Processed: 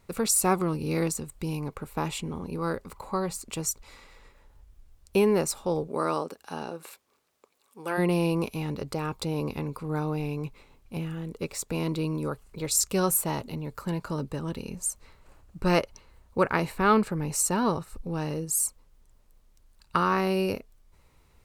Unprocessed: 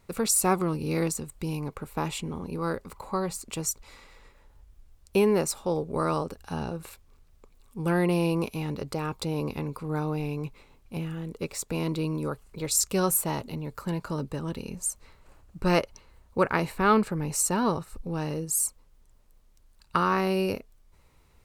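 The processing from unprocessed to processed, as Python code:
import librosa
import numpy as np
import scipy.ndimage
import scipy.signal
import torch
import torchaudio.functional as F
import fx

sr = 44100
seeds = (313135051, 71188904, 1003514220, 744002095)

y = fx.highpass(x, sr, hz=fx.line((5.87, 210.0), (7.97, 490.0)), slope=12, at=(5.87, 7.97), fade=0.02)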